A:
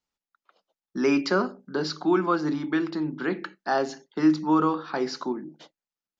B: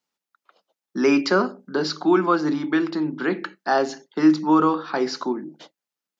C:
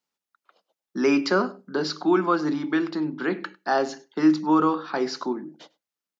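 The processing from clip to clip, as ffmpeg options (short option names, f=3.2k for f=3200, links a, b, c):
-af "highpass=160,volume=4.5dB"
-af "aecho=1:1:100:0.0631,volume=-2.5dB"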